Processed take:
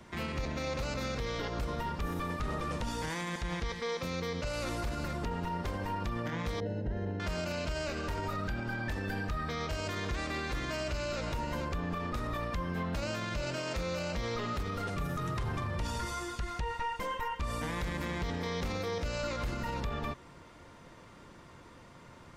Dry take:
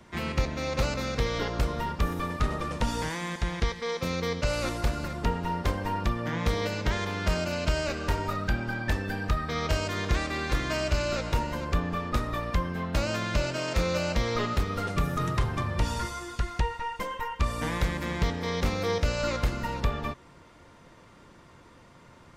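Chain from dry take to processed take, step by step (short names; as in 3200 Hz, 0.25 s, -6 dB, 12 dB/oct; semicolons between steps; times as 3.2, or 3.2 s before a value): 6.6–7.2 running mean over 38 samples; limiter -27 dBFS, peak gain reduction 11 dB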